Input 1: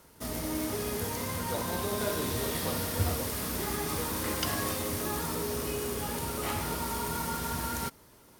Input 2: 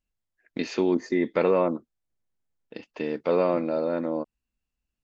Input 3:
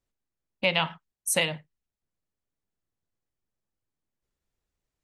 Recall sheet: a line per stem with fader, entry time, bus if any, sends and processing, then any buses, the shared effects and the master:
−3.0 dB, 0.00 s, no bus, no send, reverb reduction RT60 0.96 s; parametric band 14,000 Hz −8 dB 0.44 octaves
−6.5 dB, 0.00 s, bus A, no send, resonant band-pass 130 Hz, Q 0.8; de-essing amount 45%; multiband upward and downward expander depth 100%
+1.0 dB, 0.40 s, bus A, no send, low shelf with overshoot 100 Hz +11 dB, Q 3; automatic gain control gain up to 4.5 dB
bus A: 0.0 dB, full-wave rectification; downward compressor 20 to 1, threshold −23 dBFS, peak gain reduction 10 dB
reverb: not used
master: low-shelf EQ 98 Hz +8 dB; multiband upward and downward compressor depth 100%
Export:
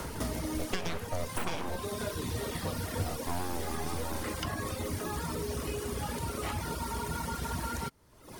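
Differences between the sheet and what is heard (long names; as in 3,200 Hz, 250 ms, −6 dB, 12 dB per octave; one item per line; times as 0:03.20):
stem 2 −6.5 dB → +1.0 dB
stem 3: entry 0.40 s → 0.10 s
master: missing low-shelf EQ 98 Hz +8 dB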